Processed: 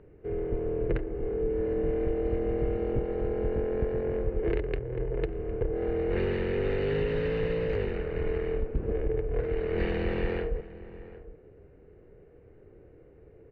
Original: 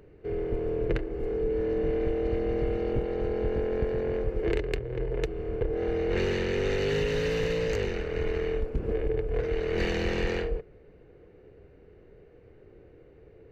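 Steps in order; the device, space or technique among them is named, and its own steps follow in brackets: shout across a valley (distance through air 430 m; echo from a far wall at 130 m, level -16 dB)

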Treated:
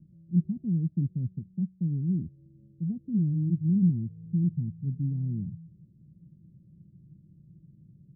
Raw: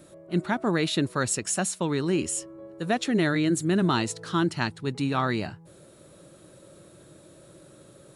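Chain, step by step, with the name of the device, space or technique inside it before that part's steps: the neighbour's flat through the wall (low-pass 190 Hz 24 dB/octave; peaking EQ 170 Hz +6 dB 0.85 oct)

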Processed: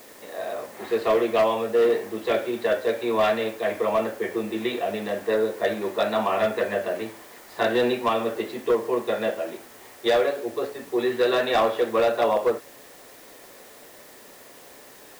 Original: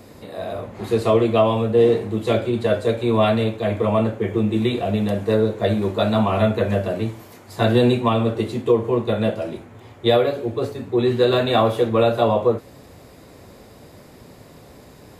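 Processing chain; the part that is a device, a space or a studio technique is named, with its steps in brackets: drive-through speaker (band-pass 390–3800 Hz; peaking EQ 1.8 kHz +7 dB 0.3 oct; hard clipper -13.5 dBFS, distortion -17 dB; white noise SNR 25 dB); trim -1.5 dB

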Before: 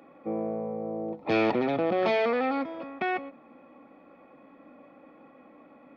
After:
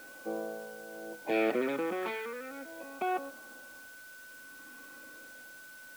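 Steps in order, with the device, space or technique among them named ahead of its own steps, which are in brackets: shortwave radio (band-pass 340–2900 Hz; tremolo 0.61 Hz, depth 76%; LFO notch sine 0.37 Hz 620–2200 Hz; whistle 1.5 kHz -49 dBFS; white noise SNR 19 dB)

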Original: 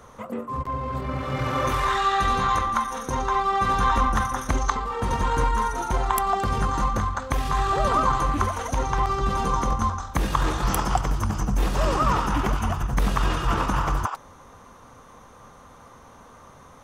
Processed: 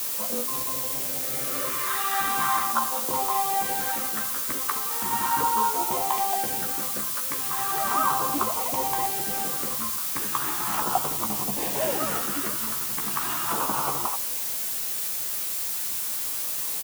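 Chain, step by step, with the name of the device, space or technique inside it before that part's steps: shortwave radio (band-pass 290–2700 Hz; tremolo 0.35 Hz, depth 51%; LFO notch saw down 0.37 Hz 460–2200 Hz; white noise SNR 8 dB); treble shelf 5.8 kHz +11.5 dB; doubling 14 ms -5 dB

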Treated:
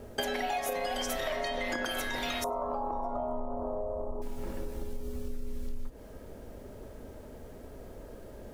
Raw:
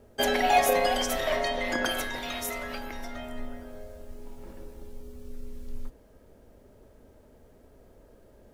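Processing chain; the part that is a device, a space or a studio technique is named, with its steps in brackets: 2.44–4.22 s: FFT filter 210 Hz 0 dB, 1.1 kHz +14 dB, 1.8 kHz -30 dB, 7.5 kHz -21 dB; serial compression, peaks first (compression 4:1, threshold -35 dBFS, peak gain reduction 15.5 dB; compression 2.5:1, threshold -41 dBFS, peak gain reduction 7 dB); trim +9 dB

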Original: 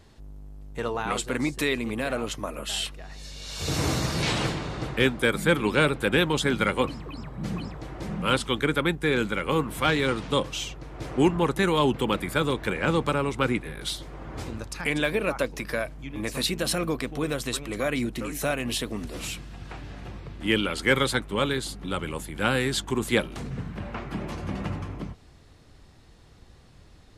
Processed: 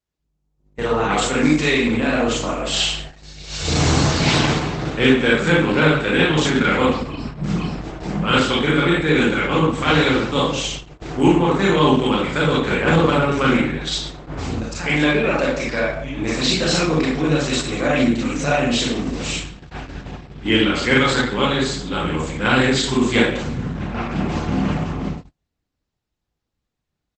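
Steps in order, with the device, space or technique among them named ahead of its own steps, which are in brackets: speakerphone in a meeting room (reverberation RT60 0.55 s, pre-delay 27 ms, DRR -5 dB; speakerphone echo 140 ms, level -15 dB; level rider gain up to 4.5 dB; gate -28 dBFS, range -36 dB; Opus 12 kbps 48 kHz)

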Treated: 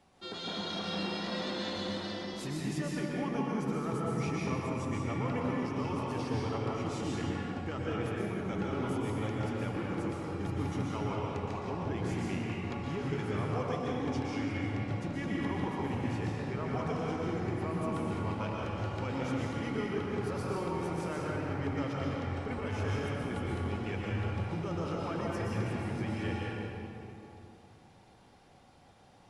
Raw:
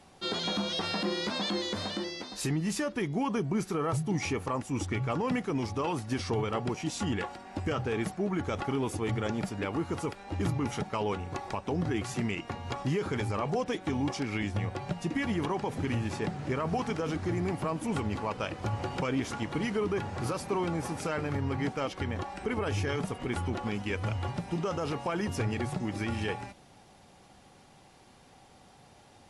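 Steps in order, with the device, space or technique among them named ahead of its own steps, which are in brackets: swimming-pool hall (reverberation RT60 2.9 s, pre-delay 114 ms, DRR -4.5 dB; treble shelf 5.4 kHz -5 dB); trim -8.5 dB

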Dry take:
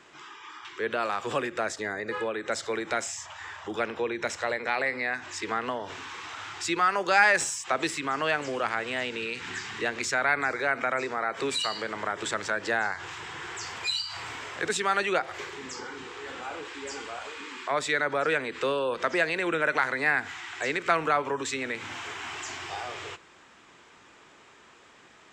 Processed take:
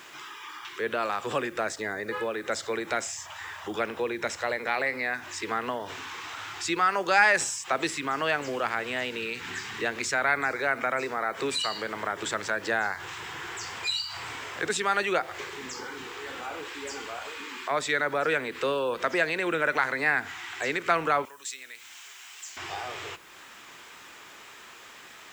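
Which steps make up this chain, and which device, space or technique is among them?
noise-reduction cassette on a plain deck (tape noise reduction on one side only encoder only; wow and flutter 24 cents; white noise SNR 31 dB); 21.25–22.57 s: pre-emphasis filter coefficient 0.97

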